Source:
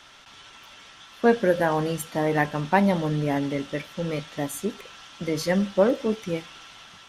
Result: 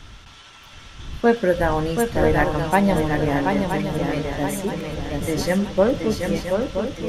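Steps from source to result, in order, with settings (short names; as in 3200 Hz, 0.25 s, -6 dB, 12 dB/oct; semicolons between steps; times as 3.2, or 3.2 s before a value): wind noise 91 Hz -36 dBFS; swung echo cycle 0.973 s, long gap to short 3:1, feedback 41%, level -5 dB; gain +2 dB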